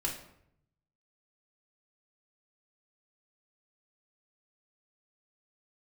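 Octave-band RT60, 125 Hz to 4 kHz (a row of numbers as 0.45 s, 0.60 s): 1.3 s, 0.90 s, 0.75 s, 0.70 s, 0.60 s, 0.50 s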